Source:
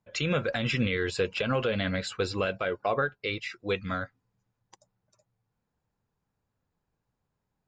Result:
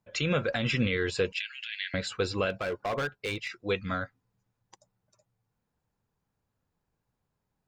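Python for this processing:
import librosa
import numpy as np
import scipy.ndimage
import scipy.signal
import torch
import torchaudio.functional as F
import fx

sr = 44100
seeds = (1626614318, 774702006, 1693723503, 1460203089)

y = fx.steep_highpass(x, sr, hz=1700.0, slope=72, at=(1.32, 1.94))
y = fx.overload_stage(y, sr, gain_db=27.0, at=(2.5, 3.51))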